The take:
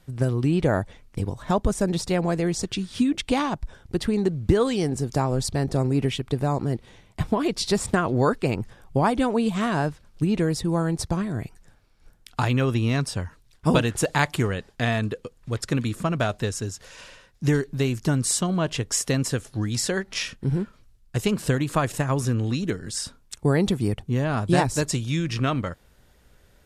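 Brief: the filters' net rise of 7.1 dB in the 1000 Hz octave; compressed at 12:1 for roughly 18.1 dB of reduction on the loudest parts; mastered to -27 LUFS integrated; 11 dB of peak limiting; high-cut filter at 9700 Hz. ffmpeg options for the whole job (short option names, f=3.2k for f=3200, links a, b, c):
-af "lowpass=9.7k,equalizer=f=1k:t=o:g=9,acompressor=threshold=-30dB:ratio=12,volume=9.5dB,alimiter=limit=-15.5dB:level=0:latency=1"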